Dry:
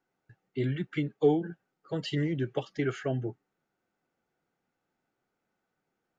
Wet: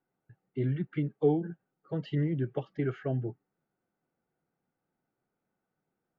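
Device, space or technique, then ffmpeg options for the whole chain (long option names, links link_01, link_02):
phone in a pocket: -af "lowpass=3600,equalizer=frequency=150:width_type=o:width=1:gain=4,highshelf=frequency=2200:gain=-11,volume=-2dB"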